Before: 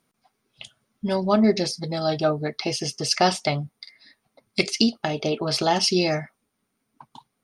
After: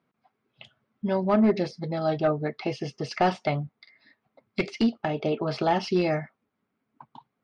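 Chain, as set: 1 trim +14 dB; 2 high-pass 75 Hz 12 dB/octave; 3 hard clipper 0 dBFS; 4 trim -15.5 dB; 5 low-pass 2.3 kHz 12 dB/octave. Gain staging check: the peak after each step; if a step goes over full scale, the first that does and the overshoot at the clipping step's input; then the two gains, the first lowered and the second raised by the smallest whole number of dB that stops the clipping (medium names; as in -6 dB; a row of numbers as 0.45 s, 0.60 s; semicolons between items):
+10.0 dBFS, +10.0 dBFS, 0.0 dBFS, -15.5 dBFS, -15.0 dBFS; step 1, 10.0 dB; step 1 +4 dB, step 4 -5.5 dB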